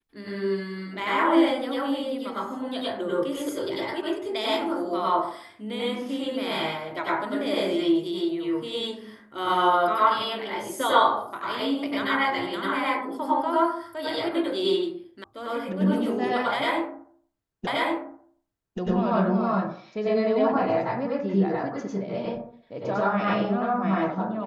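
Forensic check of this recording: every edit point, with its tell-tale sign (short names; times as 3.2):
15.24 sound cut off
17.67 repeat of the last 1.13 s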